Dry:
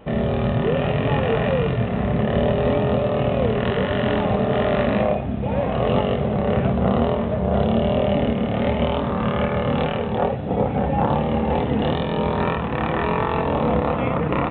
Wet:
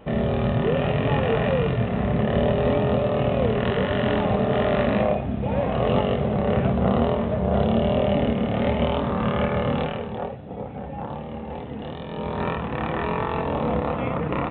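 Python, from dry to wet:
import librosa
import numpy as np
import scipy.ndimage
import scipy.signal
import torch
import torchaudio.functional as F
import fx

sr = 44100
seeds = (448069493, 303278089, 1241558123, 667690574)

y = fx.gain(x, sr, db=fx.line((9.65, -1.5), (10.49, -12.5), (11.93, -12.5), (12.47, -4.0)))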